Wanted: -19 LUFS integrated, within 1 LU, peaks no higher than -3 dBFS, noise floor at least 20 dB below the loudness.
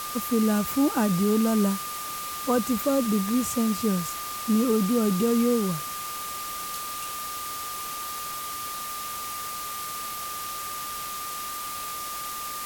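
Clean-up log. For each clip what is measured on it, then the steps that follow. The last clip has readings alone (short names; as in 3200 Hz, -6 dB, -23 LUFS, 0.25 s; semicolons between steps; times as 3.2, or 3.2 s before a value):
steady tone 1200 Hz; tone level -34 dBFS; noise floor -34 dBFS; noise floor target -47 dBFS; loudness -27.0 LUFS; peak -12.5 dBFS; loudness target -19.0 LUFS
-> notch 1200 Hz, Q 30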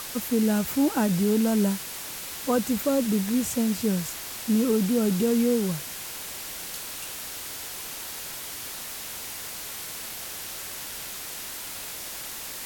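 steady tone none; noise floor -37 dBFS; noise floor target -48 dBFS
-> noise print and reduce 11 dB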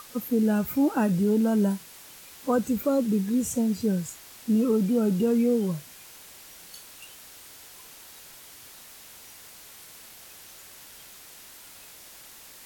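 noise floor -48 dBFS; loudness -25.0 LUFS; peak -13.5 dBFS; loudness target -19.0 LUFS
-> gain +6 dB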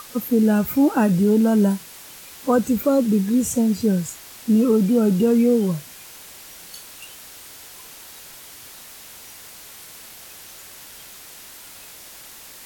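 loudness -19.0 LUFS; peak -7.5 dBFS; noise floor -42 dBFS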